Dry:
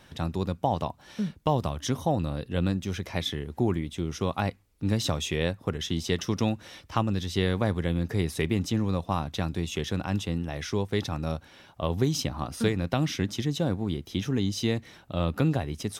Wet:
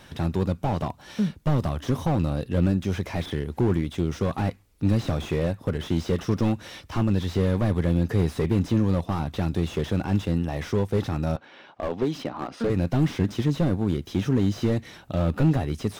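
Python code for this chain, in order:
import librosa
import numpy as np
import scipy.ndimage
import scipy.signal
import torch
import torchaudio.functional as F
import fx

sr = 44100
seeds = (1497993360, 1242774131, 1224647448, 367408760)

y = fx.bandpass_edges(x, sr, low_hz=280.0, high_hz=3100.0, at=(11.36, 12.7))
y = fx.slew_limit(y, sr, full_power_hz=22.0)
y = y * librosa.db_to_amplitude(5.5)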